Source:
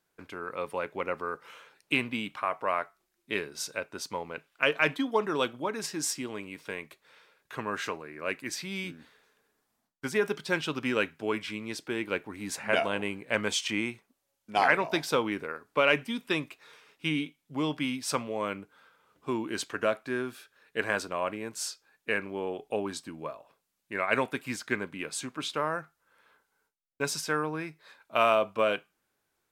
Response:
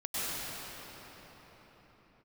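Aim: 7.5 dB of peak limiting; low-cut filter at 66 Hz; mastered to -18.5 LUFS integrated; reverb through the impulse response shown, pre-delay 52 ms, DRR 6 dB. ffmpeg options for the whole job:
-filter_complex "[0:a]highpass=66,alimiter=limit=0.141:level=0:latency=1,asplit=2[s0][s1];[1:a]atrim=start_sample=2205,adelay=52[s2];[s1][s2]afir=irnorm=-1:irlink=0,volume=0.2[s3];[s0][s3]amix=inputs=2:normalize=0,volume=5.01"

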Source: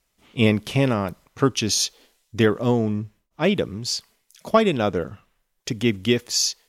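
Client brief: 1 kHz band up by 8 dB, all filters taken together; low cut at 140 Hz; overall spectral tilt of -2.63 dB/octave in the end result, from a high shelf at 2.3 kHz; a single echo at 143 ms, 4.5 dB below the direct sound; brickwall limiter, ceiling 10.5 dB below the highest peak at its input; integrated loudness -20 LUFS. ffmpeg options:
-af "highpass=140,equalizer=f=1000:t=o:g=8.5,highshelf=f=2300:g=8.5,alimiter=limit=0.355:level=0:latency=1,aecho=1:1:143:0.596,volume=1.19"

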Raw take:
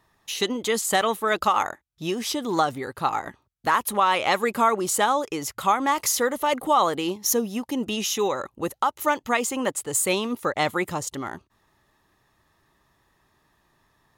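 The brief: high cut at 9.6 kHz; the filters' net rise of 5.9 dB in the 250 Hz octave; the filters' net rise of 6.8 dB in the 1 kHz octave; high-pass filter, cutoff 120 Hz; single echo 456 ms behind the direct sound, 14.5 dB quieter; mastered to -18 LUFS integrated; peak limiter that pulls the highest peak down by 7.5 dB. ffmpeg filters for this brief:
-af "highpass=120,lowpass=9600,equalizer=f=250:t=o:g=7,equalizer=f=1000:t=o:g=8,alimiter=limit=0.335:level=0:latency=1,aecho=1:1:456:0.188,volume=1.5"

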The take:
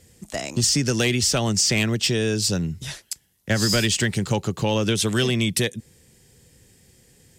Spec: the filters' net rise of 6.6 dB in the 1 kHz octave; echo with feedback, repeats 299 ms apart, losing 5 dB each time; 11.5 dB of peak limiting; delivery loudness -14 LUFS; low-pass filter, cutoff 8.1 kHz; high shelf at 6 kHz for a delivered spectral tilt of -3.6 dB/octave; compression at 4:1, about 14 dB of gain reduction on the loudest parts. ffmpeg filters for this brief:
-af "lowpass=8100,equalizer=f=1000:t=o:g=8.5,highshelf=f=6000:g=6,acompressor=threshold=0.0224:ratio=4,alimiter=level_in=1.26:limit=0.0631:level=0:latency=1,volume=0.794,aecho=1:1:299|598|897|1196|1495|1794|2093:0.562|0.315|0.176|0.0988|0.0553|0.031|0.0173,volume=10"

